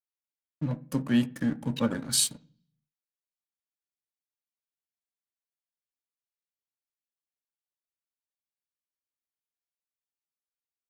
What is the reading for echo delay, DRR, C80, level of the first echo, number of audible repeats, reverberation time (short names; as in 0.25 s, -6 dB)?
none, 11.0 dB, 26.0 dB, none, none, 0.50 s